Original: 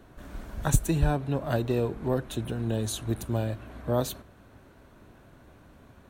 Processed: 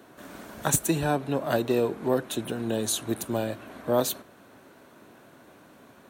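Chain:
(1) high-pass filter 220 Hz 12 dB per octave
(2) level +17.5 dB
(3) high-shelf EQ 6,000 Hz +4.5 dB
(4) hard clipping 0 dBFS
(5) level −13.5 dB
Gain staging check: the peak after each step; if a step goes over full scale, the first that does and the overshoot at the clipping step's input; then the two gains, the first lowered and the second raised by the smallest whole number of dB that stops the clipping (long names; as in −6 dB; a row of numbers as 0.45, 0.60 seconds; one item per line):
−12.0, +5.5, +7.0, 0.0, −13.5 dBFS
step 2, 7.0 dB
step 2 +10.5 dB, step 5 −6.5 dB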